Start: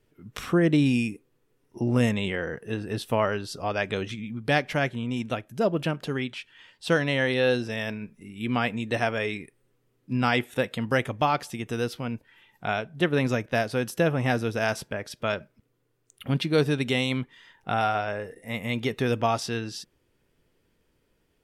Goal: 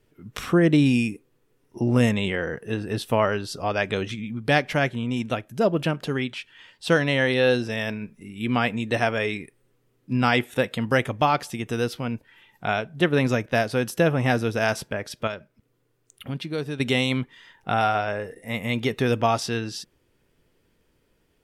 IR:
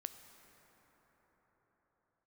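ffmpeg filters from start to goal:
-filter_complex "[0:a]asettb=1/sr,asplit=3[a][b][c];[a]atrim=end=15.274[d];[b]atrim=start=15.27:end=16.8,asetpts=PTS-STARTPTS,afade=t=in:d=0.004:c=qsin,afade=t=out:st=1.526:d=0.004:c=qsin,acompressor=threshold=-46dB:ratio=1.5[e];[c]atrim=start=16.796[f];[d][e]acrossfade=d=0.004:c1=hsin:c2=qsin[g];[g][f]acrossfade=d=0.004:c1=qsin:c2=hsin,volume=3dB"

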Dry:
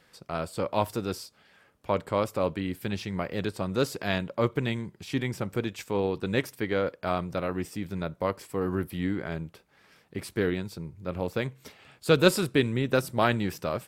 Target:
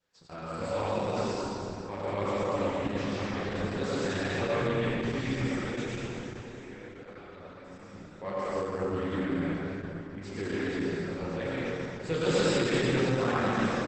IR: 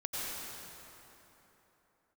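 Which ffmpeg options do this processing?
-filter_complex "[0:a]bandreject=f=640:w=12,agate=range=-10dB:threshold=-53dB:ratio=16:detection=peak,adynamicequalizer=threshold=0.00447:dfrequency=1900:dqfactor=2.7:tfrequency=1900:tqfactor=2.7:attack=5:release=100:ratio=0.375:range=1.5:mode=boostabove:tftype=bell,asplit=3[a][b][c];[a]afade=t=out:st=5.81:d=0.02[d];[b]acompressor=threshold=-42dB:ratio=10,afade=t=in:st=5.81:d=0.02,afade=t=out:st=8.17:d=0.02[e];[c]afade=t=in:st=8.17:d=0.02[f];[d][e][f]amix=inputs=3:normalize=0,asoftclip=type=tanh:threshold=-14.5dB,flanger=delay=9.9:depth=9.9:regen=-25:speed=0.69:shape=sinusoidal,aecho=1:1:30|78|154.8|277.7|474.3:0.631|0.398|0.251|0.158|0.1[g];[1:a]atrim=start_sample=2205[h];[g][h]afir=irnorm=-1:irlink=0,volume=-2.5dB" -ar 48000 -c:a libopus -b:a 10k

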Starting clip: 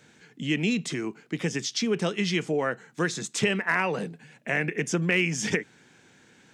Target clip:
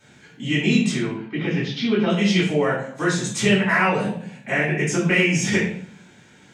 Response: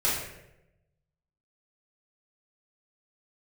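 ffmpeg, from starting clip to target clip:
-filter_complex "[0:a]asettb=1/sr,asplit=3[a][b][c];[a]atrim=end=0.974[d];[b]atrim=start=0.97:end=2.1,asetpts=PTS-STARTPTS,afade=t=in:d=0.004:c=qsin,afade=t=out:st=1.126:d=0.004:c=qsin,lowpass=f=3.7k:w=0.5412,lowpass=f=3.7k:w=1.3066[e];[c]atrim=start=2.096[f];[d][e]acrossfade=d=0.004:c1=hsin:c2=qsin[g];[g][f]acrossfade=d=0.004:c1=qsin:c2=hsin[h];[1:a]atrim=start_sample=2205,asetrate=66150,aresample=44100[i];[h][i]afir=irnorm=-1:irlink=0,volume=-1.5dB"

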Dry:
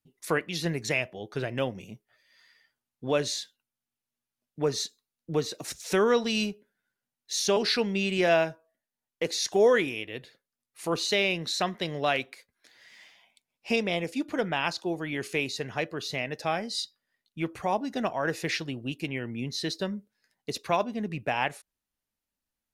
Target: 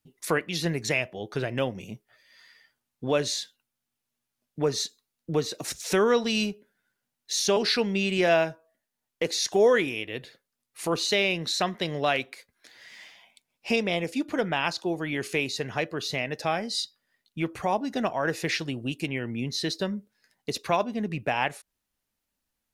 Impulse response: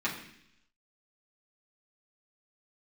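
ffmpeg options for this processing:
-filter_complex "[0:a]asettb=1/sr,asplit=3[a][b][c];[a]atrim=end=18.594[d];[b]atrim=start=18.59:end=19.06,asetpts=PTS-STARTPTS,afade=t=in:d=0.004:c=qsin,afade=t=out:st=0.466:d=0.004:c=qsin,equalizer=f=8.4k:w=1.6:g=5.5[e];[c]atrim=start=19.056[f];[d][e]acrossfade=d=0.004:c1=hsin:c2=qsin[g];[g][f]acrossfade=d=0.004:c1=qsin:c2=hsin,asplit=2[h][i];[i]acompressor=threshold=-38dB:ratio=6,volume=-1dB[j];[h][j]amix=inputs=2:normalize=0"

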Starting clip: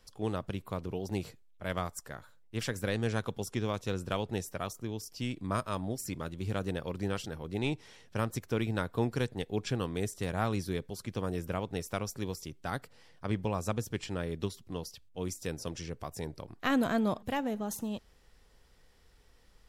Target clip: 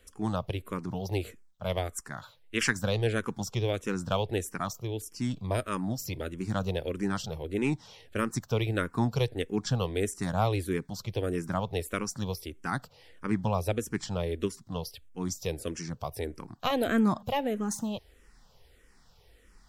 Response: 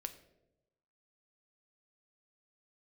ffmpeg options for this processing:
-filter_complex "[0:a]asettb=1/sr,asplit=3[a][b][c];[a]atrim=end=2.174[d];[b]atrim=start=2.17:end=2.73,asetpts=PTS-STARTPTS,afade=t=in:d=0.004:c=qsin,afade=t=out:st=0.556:d=0.004:c=qsin,equalizer=f=2.9k:w=0.46:g=9.5[e];[c]atrim=start=2.726[f];[d][e]acrossfade=d=0.004:c1=hsin:c2=qsin[g];[g][f]acrossfade=d=0.004:c1=qsin:c2=hsin,asplit=2[h][i];[i]afreqshift=-1.6[j];[h][j]amix=inputs=2:normalize=1,volume=6.5dB"

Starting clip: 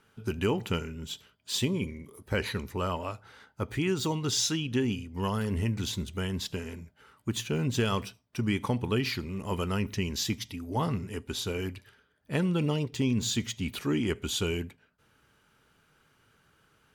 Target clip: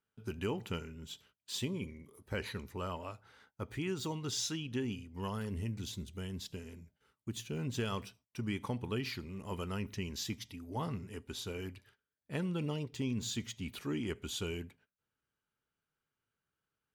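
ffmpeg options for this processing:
-filter_complex "[0:a]agate=range=-16dB:threshold=-56dB:ratio=16:detection=peak,asettb=1/sr,asplit=3[a][b][c];[a]atrim=end=5.494[d];[b]atrim=start=5.49:end=7.57,asetpts=PTS-STARTPTS,afade=t=in:d=0.004:c=qsin,afade=t=out:st=2.076:d=0.004:c=qsin,equalizer=f=1.2k:w=0.61:g=-6[e];[c]atrim=start=7.566[f];[d][e]acrossfade=d=0.004:c1=hsin:c2=qsin[g];[g][f]acrossfade=d=0.004:c1=qsin:c2=hsin,volume=-8.5dB"

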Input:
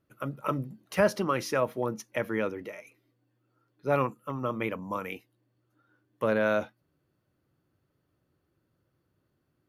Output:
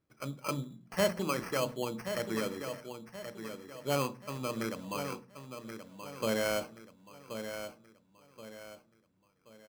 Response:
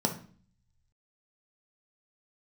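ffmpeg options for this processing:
-filter_complex "[0:a]acrusher=samples=12:mix=1:aa=0.000001,aecho=1:1:1078|2156|3234|4312:0.355|0.135|0.0512|0.0195,asplit=2[a][b];[1:a]atrim=start_sample=2205,adelay=32[c];[b][c]afir=irnorm=-1:irlink=0,volume=-21.5dB[d];[a][d]amix=inputs=2:normalize=0,volume=-5.5dB"

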